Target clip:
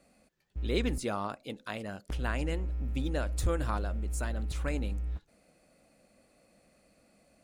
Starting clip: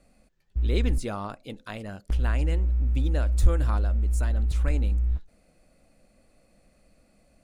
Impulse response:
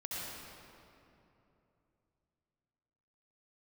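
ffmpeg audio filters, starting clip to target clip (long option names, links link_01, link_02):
-af "highpass=frequency=180:poles=1"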